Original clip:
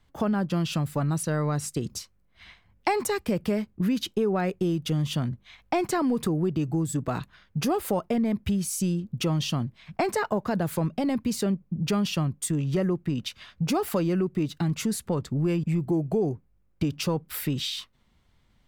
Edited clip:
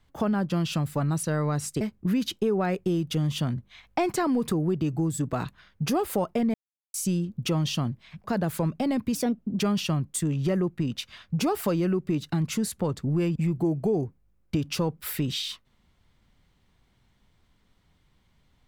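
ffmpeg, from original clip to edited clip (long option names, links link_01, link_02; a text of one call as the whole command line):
ffmpeg -i in.wav -filter_complex "[0:a]asplit=7[link_01][link_02][link_03][link_04][link_05][link_06][link_07];[link_01]atrim=end=1.812[link_08];[link_02]atrim=start=3.558:end=8.29,asetpts=PTS-STARTPTS,afade=type=out:start_time=4.728:duration=0.004:curve=hsin[link_09];[link_03]atrim=start=8.29:end=8.69,asetpts=PTS-STARTPTS,volume=0[link_10];[link_04]atrim=start=8.69:end=9.992,asetpts=PTS-STARTPTS,afade=type=in:duration=0.004:curve=hsin[link_11];[link_05]atrim=start=10.418:end=11.334[link_12];[link_06]atrim=start=11.33:end=11.88,asetpts=PTS-STARTPTS,asetrate=53802,aresample=44100,atrim=end_sample=19881,asetpts=PTS-STARTPTS[link_13];[link_07]atrim=start=11.876[link_14];[link_09][link_10][link_11]concat=n=3:v=0:a=1[link_15];[link_08][link_15]acrossfade=duration=0.004:curve1=hsin:curve2=hsin[link_16];[link_16][link_12]acrossfade=duration=0.004:curve1=hsin:curve2=hsin[link_17];[link_17][link_13]acrossfade=duration=0.004:curve1=hsin:curve2=hsin[link_18];[link_18][link_14]acrossfade=duration=0.004:curve1=hsin:curve2=hsin" out.wav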